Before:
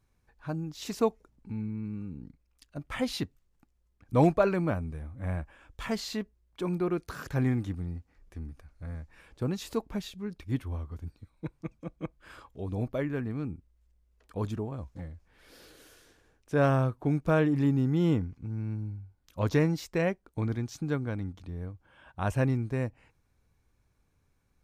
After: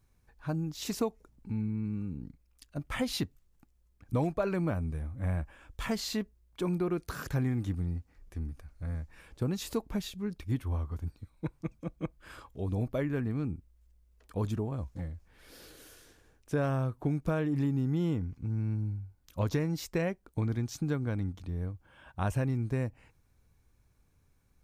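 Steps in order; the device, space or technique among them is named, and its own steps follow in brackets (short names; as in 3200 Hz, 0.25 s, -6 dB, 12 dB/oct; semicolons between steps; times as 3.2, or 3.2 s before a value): 10.64–11.59 dynamic EQ 970 Hz, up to +4 dB, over -59 dBFS, Q 0.92; ASMR close-microphone chain (low shelf 200 Hz +4 dB; compressor 6:1, threshold -26 dBFS, peak gain reduction 11 dB; high shelf 7400 Hz +6.5 dB)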